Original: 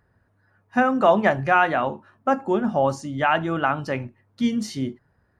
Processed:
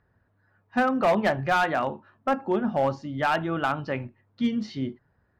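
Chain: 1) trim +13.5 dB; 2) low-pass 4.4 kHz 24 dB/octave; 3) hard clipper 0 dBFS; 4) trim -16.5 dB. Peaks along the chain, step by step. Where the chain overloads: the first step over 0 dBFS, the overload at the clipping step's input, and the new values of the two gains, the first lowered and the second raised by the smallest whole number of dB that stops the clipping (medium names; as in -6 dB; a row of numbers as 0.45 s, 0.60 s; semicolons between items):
+8.0 dBFS, +8.0 dBFS, 0.0 dBFS, -16.5 dBFS; step 1, 8.0 dB; step 1 +5.5 dB, step 4 -8.5 dB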